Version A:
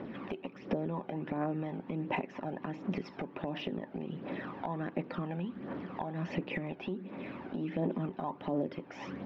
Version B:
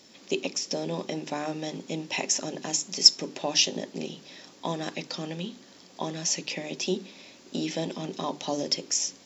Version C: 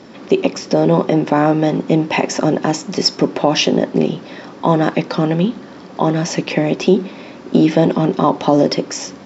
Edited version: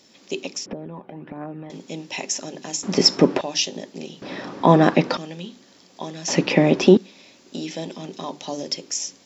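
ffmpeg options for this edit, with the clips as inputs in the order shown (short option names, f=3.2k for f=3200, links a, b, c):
-filter_complex "[2:a]asplit=3[a][b][c];[1:a]asplit=5[d][e][f][g][h];[d]atrim=end=0.662[i];[0:a]atrim=start=0.658:end=1.702[j];[e]atrim=start=1.698:end=2.832[k];[a]atrim=start=2.828:end=3.412[l];[f]atrim=start=3.408:end=4.222[m];[b]atrim=start=4.218:end=5.172[n];[g]atrim=start=5.168:end=6.282[o];[c]atrim=start=6.278:end=6.972[p];[h]atrim=start=6.968[q];[i][j]acrossfade=d=0.004:c1=hsin:c2=hsin[r];[r][k]acrossfade=d=0.004:c1=hsin:c2=hsin[s];[s][l]acrossfade=d=0.004:c1=hsin:c2=hsin[t];[t][m]acrossfade=d=0.004:c1=hsin:c2=hsin[u];[u][n]acrossfade=d=0.004:c1=hsin:c2=hsin[v];[v][o]acrossfade=d=0.004:c1=hsin:c2=hsin[w];[w][p]acrossfade=d=0.004:c1=hsin:c2=hsin[x];[x][q]acrossfade=d=0.004:c1=hsin:c2=hsin"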